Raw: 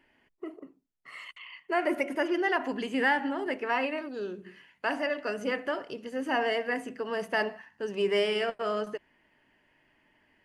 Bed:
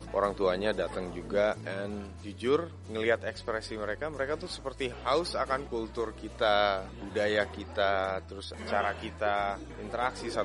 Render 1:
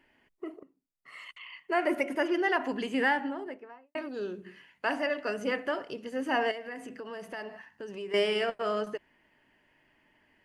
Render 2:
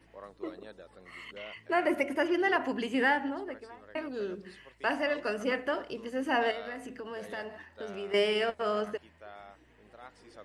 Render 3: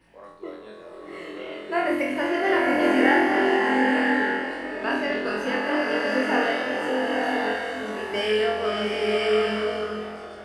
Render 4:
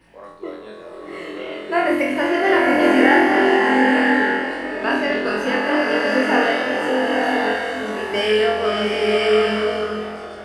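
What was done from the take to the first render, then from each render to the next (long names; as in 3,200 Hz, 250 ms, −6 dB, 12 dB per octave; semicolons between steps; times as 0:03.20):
0:00.63–0:01.45: fade in, from −13 dB; 0:02.94–0:03.95: fade out and dull; 0:06.51–0:08.14: downward compressor 3 to 1, threshold −39 dBFS
mix in bed −19.5 dB
on a send: flutter between parallel walls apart 4 metres, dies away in 0.67 s; on the sum: slow-attack reverb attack 1,010 ms, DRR −3 dB
level +5.5 dB; brickwall limiter −2 dBFS, peak gain reduction 1.5 dB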